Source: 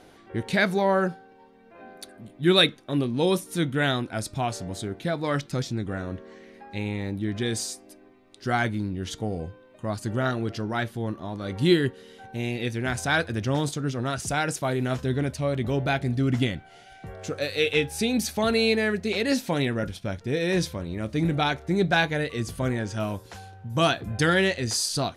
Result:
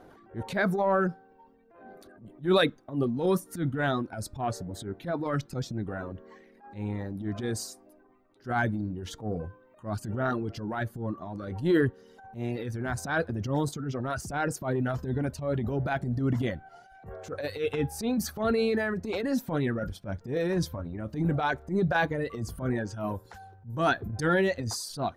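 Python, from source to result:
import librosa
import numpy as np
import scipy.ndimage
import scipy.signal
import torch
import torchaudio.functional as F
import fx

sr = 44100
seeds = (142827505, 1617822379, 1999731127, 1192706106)

y = fx.band_shelf(x, sr, hz=4900.0, db=-11.5, octaves=2.8)
y = fx.dereverb_blind(y, sr, rt60_s=1.1)
y = fx.transient(y, sr, attack_db=-12, sustain_db=6)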